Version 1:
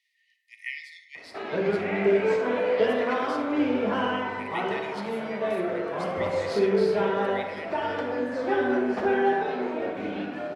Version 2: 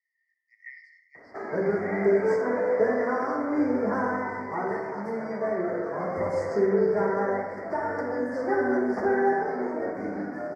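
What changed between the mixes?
speech: add tape spacing loss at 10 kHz 31 dB; master: add elliptic band-stop 2000–4900 Hz, stop band 40 dB

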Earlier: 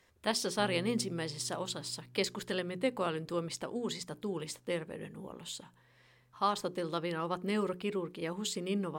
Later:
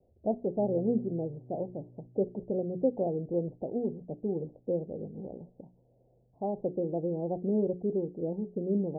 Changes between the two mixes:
speech +5.0 dB; master: add steep low-pass 750 Hz 72 dB/oct

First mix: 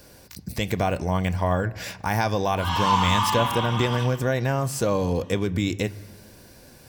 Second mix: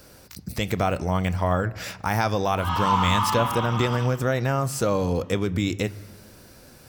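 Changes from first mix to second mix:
background: add high shelf 2900 Hz -10 dB; master: remove Butterworth band-stop 1300 Hz, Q 7.6

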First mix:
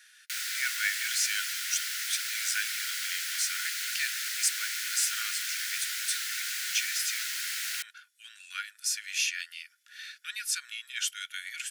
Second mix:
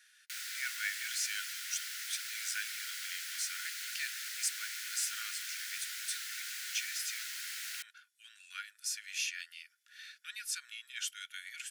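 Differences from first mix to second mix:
speech -7.0 dB; background -8.0 dB

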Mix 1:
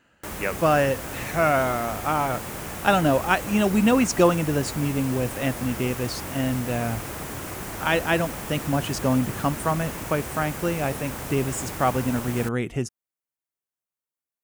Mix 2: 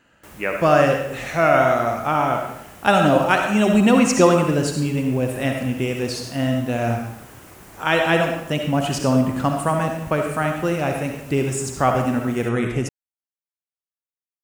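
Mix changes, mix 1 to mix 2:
background -10.0 dB; reverb: on, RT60 0.75 s

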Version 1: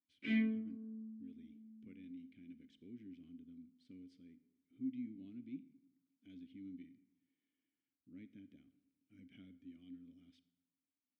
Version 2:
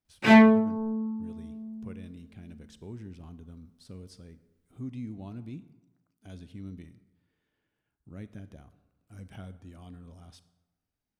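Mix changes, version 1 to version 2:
background +7.0 dB; master: remove vowel filter i

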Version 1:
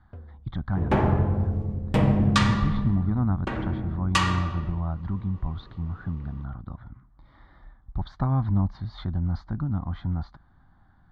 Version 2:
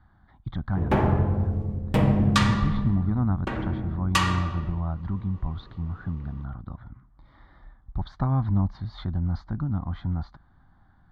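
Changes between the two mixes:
first sound: muted; master: remove LPF 9600 Hz 12 dB/oct

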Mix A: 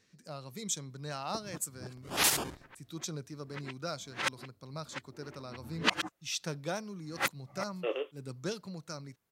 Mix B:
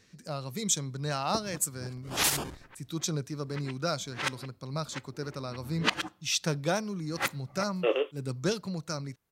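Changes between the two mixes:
speech +7.0 dB; first sound: send on; master: add low shelf 68 Hz +9.5 dB

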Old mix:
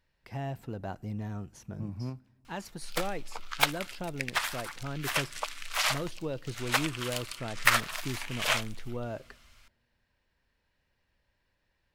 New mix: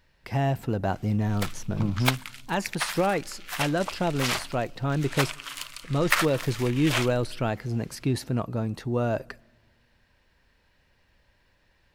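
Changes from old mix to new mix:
speech +11.0 dB; background: entry -1.55 s

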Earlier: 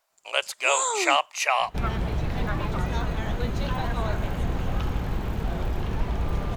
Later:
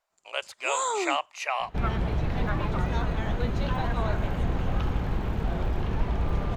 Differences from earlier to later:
speech -5.5 dB; master: add high shelf 6100 Hz -11 dB

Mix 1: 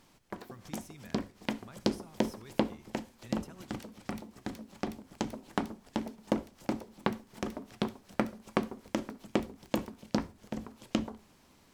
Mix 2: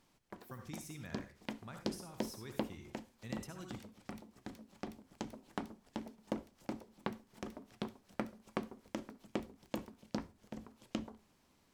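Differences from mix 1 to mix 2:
speech: send +11.0 dB; background -9.0 dB

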